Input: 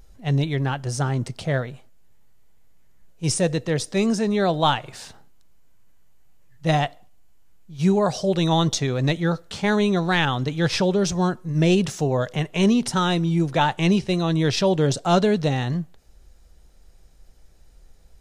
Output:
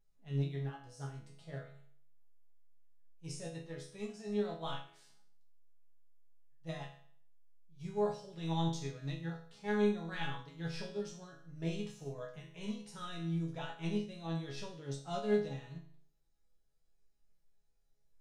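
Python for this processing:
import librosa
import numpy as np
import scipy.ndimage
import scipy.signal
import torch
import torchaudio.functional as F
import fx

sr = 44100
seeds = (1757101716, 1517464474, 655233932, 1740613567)

y = fx.resonator_bank(x, sr, root=49, chord='minor', decay_s=0.56)
y = fx.upward_expand(y, sr, threshold_db=-44.0, expansion=1.5)
y = y * 10.0 ** (1.0 / 20.0)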